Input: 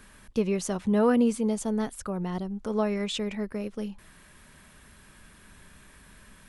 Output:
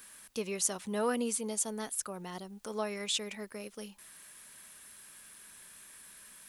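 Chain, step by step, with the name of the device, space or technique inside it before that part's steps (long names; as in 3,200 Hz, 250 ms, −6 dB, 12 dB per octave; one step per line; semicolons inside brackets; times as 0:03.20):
turntable without a phono preamp (RIAA equalisation recording; white noise bed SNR 36 dB)
level −5.5 dB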